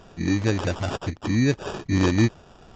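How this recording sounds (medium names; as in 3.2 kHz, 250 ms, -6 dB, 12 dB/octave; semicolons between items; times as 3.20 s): aliases and images of a low sample rate 2.1 kHz, jitter 0%; SBC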